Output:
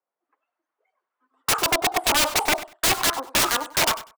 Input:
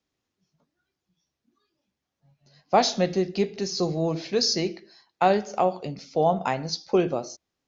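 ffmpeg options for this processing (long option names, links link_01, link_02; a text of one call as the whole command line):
ffmpeg -i in.wav -filter_complex "[0:a]lowpass=1000,agate=range=-8dB:threshold=-50dB:ratio=16:detection=peak,highpass=170,equalizer=frequency=540:width=0.72:gain=10,acrossover=split=490[link_01][link_02];[link_02]dynaudnorm=framelen=320:gausssize=3:maxgain=12dB[link_03];[link_01][link_03]amix=inputs=2:normalize=0,asetrate=81144,aresample=44100,aeval=exprs='(mod(3.55*val(0)+1,2)-1)/3.55':channel_layout=same,asplit=2[link_04][link_05];[link_05]aecho=0:1:97|194:0.168|0.0285[link_06];[link_04][link_06]amix=inputs=2:normalize=0,volume=-3dB" out.wav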